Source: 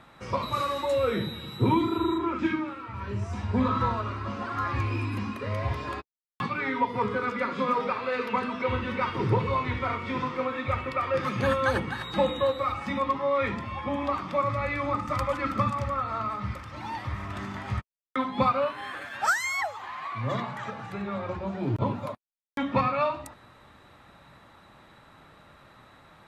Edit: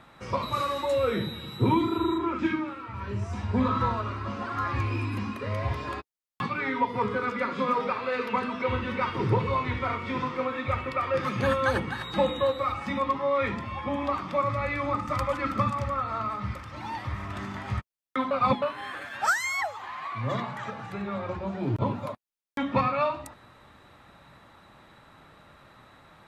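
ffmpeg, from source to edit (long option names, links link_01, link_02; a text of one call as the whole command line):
ffmpeg -i in.wav -filter_complex "[0:a]asplit=3[link_01][link_02][link_03];[link_01]atrim=end=18.312[link_04];[link_02]atrim=start=18.308:end=18.622,asetpts=PTS-STARTPTS,areverse[link_05];[link_03]atrim=start=18.618[link_06];[link_04][link_05]acrossfade=duration=0.004:curve1=hsin:curve2=hsin[link_07];[link_07][link_06]acrossfade=duration=0.004:curve1=hsin:curve2=hsin" out.wav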